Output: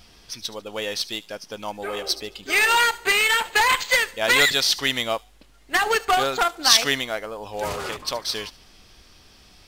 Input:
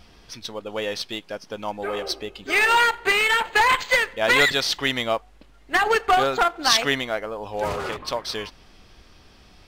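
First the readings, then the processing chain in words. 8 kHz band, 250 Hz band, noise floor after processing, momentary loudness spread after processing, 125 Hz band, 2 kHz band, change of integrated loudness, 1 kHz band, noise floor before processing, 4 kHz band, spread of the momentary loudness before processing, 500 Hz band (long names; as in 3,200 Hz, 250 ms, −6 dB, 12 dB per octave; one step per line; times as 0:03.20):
+6.0 dB, −2.5 dB, −53 dBFS, 16 LU, −2.5 dB, 0.0 dB, +0.5 dB, −1.5 dB, −52 dBFS, +3.0 dB, 15 LU, −2.5 dB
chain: high-shelf EQ 3,600 Hz +10.5 dB
on a send: delay with a high-pass on its return 73 ms, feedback 33%, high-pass 4,500 Hz, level −14 dB
on the sum: level −2.5 dB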